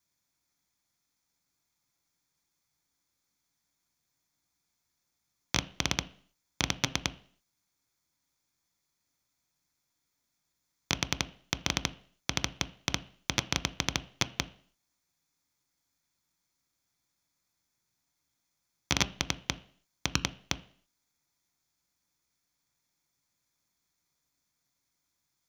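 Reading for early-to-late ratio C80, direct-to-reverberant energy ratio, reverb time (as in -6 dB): 23.5 dB, 11.5 dB, 0.50 s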